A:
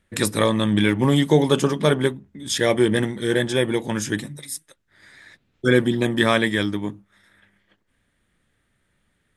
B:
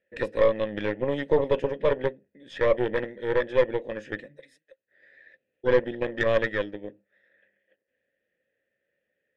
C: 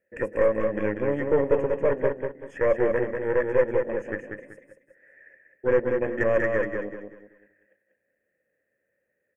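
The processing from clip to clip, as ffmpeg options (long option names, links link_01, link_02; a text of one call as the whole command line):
ffmpeg -i in.wav -filter_complex "[0:a]asplit=3[link_01][link_02][link_03];[link_01]bandpass=frequency=530:width_type=q:width=8,volume=0dB[link_04];[link_02]bandpass=frequency=1840:width_type=q:width=8,volume=-6dB[link_05];[link_03]bandpass=frequency=2480:width_type=q:width=8,volume=-9dB[link_06];[link_04][link_05][link_06]amix=inputs=3:normalize=0,aeval=exprs='0.211*(cos(1*acos(clip(val(0)/0.211,-1,1)))-cos(1*PI/2))+0.0237*(cos(6*acos(clip(val(0)/0.211,-1,1)))-cos(6*PI/2))':channel_layout=same,aemphasis=mode=reproduction:type=75kf,volume=5dB" out.wav
ffmpeg -i in.wav -filter_complex "[0:a]asoftclip=type=tanh:threshold=-12.5dB,asuperstop=centerf=4000:order=4:qfactor=0.82,asplit=2[link_01][link_02];[link_02]aecho=0:1:191|382|573|764:0.562|0.174|0.054|0.0168[link_03];[link_01][link_03]amix=inputs=2:normalize=0,volume=1.5dB" out.wav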